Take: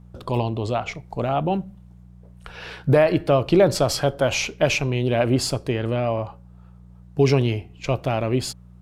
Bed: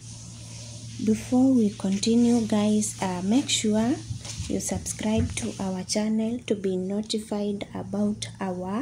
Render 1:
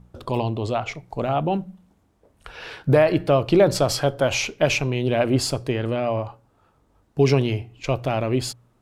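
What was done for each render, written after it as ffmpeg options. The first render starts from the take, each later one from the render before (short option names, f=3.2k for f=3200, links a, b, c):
-af "bandreject=f=60:t=h:w=4,bandreject=f=120:t=h:w=4,bandreject=f=180:t=h:w=4"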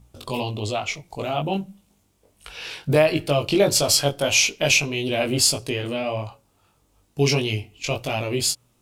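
-af "flanger=delay=19:depth=2.1:speed=1.6,aexciter=amount=3.9:drive=3:freq=2.3k"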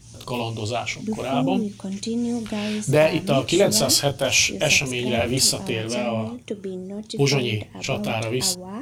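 -filter_complex "[1:a]volume=-4.5dB[a];[0:a][a]amix=inputs=2:normalize=0"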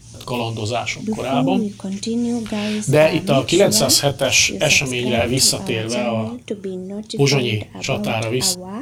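-af "volume=4dB,alimiter=limit=-2dB:level=0:latency=1"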